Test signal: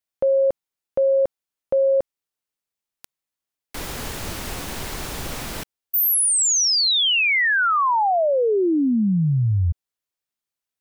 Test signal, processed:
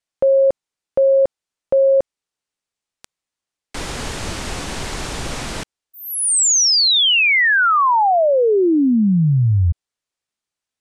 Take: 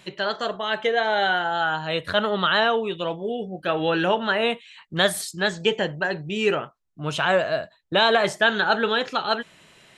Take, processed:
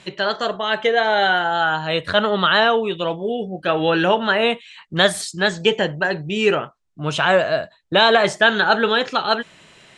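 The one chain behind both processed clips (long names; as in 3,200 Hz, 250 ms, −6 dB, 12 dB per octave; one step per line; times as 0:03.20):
low-pass filter 9,300 Hz 24 dB per octave
level +4.5 dB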